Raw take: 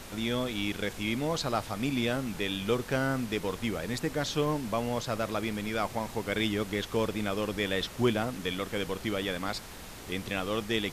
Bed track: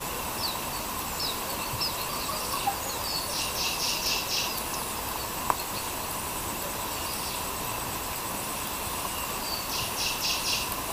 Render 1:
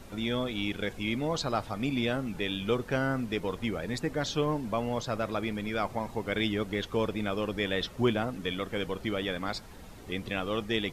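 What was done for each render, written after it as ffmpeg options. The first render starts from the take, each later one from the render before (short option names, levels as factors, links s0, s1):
-af "afftdn=nr=10:nf=-44"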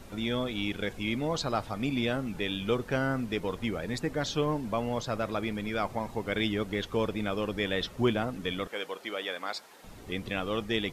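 -filter_complex "[0:a]asettb=1/sr,asplit=3[s0][s1][s2];[s0]atrim=end=8.674[s3];[s1]atrim=start=8.67:end=9.84,asetpts=PTS-STARTPTS,afade=t=in:d=0.004:c=qsin,afade=t=out:st=1.166:d=0.004:c=qsin,highpass=490[s4];[s2]atrim=start=9.836[s5];[s3][s4]acrossfade=d=0.004:c1=hsin:c2=qsin[s6];[s6][s5]acrossfade=d=0.004:c1=qsin:c2=hsin"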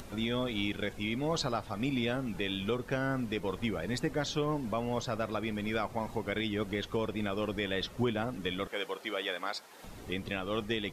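-af "alimiter=limit=0.0891:level=0:latency=1:release=335,acompressor=mode=upward:threshold=0.00708:ratio=2.5"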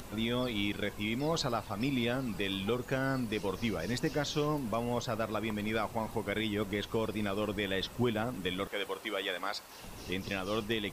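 -filter_complex "[1:a]volume=0.075[s0];[0:a][s0]amix=inputs=2:normalize=0"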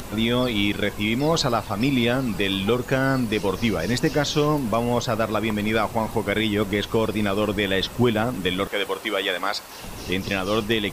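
-af "volume=3.55"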